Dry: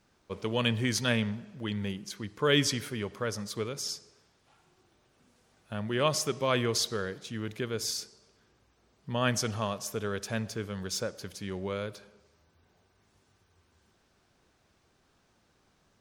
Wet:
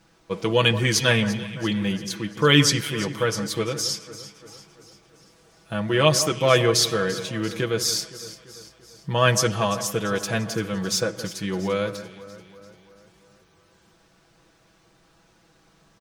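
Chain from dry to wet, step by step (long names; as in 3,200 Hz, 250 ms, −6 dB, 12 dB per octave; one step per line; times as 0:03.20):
comb filter 6.1 ms, depth 74%
on a send: delay that swaps between a low-pass and a high-pass 171 ms, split 1,900 Hz, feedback 72%, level −12.5 dB
on the sum: level +7.5 dB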